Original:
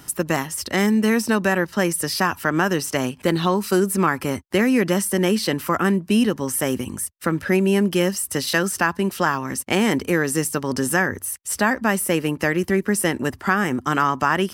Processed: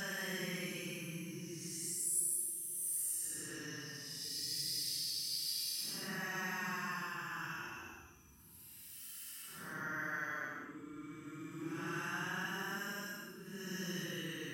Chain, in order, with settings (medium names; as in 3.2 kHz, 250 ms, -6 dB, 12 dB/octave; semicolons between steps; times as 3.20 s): bass shelf 210 Hz -11.5 dB; hum notches 50/100/150/200/250/300/350/400/450 Hz; Paulstretch 15×, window 0.05 s, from 1.80 s; amplifier tone stack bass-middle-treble 6-0-2; trim +1 dB